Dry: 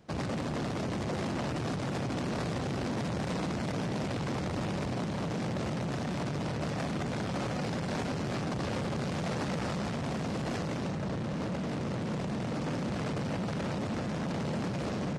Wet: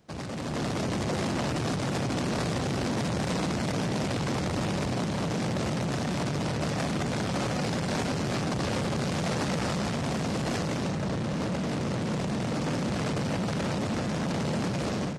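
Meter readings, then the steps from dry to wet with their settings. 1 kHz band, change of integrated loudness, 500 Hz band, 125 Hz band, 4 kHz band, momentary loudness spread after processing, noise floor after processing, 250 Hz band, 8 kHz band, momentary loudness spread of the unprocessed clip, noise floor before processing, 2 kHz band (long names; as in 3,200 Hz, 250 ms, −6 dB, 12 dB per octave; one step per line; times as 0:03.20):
+4.0 dB, +4.0 dB, +4.0 dB, +4.0 dB, +6.5 dB, 1 LU, −31 dBFS, +4.0 dB, +8.5 dB, 1 LU, −34 dBFS, +5.0 dB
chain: high-shelf EQ 4,500 Hz +6.5 dB
automatic gain control gain up to 7.5 dB
level −3.5 dB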